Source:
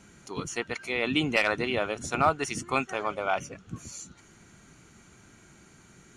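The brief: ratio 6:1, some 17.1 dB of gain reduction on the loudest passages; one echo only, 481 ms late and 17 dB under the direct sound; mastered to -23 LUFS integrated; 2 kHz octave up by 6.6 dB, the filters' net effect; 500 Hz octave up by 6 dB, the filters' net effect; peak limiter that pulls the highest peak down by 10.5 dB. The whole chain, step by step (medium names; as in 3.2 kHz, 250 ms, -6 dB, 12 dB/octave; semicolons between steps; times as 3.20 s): peaking EQ 500 Hz +7 dB; peaking EQ 2 kHz +8 dB; compression 6:1, threshold -32 dBFS; peak limiter -27 dBFS; delay 481 ms -17 dB; trim +17 dB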